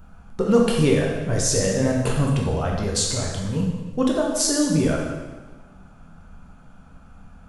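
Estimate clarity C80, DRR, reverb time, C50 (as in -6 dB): 4.5 dB, -2.0 dB, 1.3 s, 2.0 dB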